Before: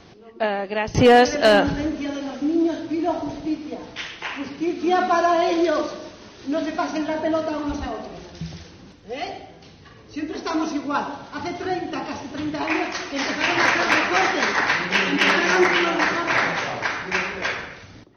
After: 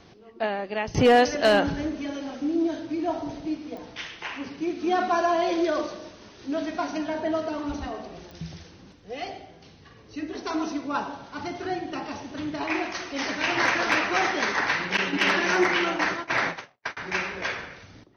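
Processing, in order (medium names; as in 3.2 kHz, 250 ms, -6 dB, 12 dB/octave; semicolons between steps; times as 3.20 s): 14.97–16.97 s: gate -22 dBFS, range -59 dB; clicks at 3.77/8.31 s, -25 dBFS; trim -4.5 dB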